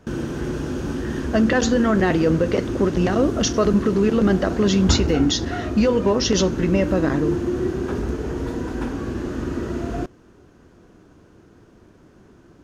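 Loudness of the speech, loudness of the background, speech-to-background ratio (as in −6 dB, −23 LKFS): −20.0 LKFS, −26.5 LKFS, 6.5 dB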